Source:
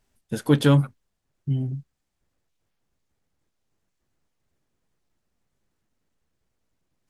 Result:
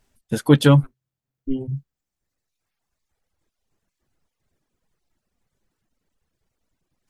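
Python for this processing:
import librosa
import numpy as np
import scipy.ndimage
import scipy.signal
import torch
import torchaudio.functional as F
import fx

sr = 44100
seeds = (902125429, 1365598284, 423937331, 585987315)

y = fx.ring_mod(x, sr, carrier_hz=130.0, at=(0.83, 1.67), fade=0.02)
y = fx.dereverb_blind(y, sr, rt60_s=1.8)
y = F.gain(torch.from_numpy(y), 5.0).numpy()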